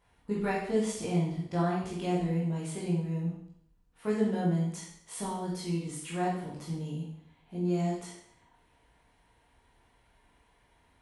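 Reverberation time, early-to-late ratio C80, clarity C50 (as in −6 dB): 0.70 s, 6.0 dB, 2.5 dB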